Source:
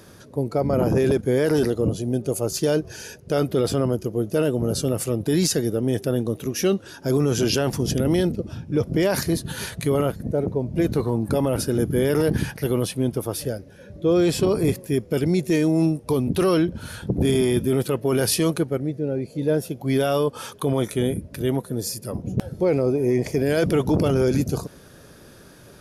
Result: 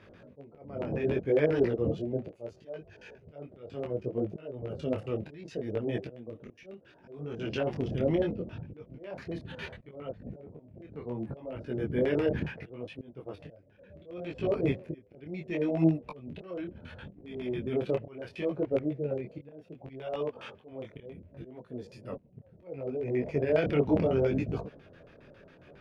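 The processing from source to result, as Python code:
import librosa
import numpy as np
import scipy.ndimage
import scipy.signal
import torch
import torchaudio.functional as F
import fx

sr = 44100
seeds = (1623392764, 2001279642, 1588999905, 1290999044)

y = fx.auto_swell(x, sr, attack_ms=680.0)
y = fx.filter_lfo_lowpass(y, sr, shape='square', hz=7.3, low_hz=620.0, high_hz=2500.0, q=2.6)
y = fx.detune_double(y, sr, cents=24)
y = y * 10.0 ** (-5.0 / 20.0)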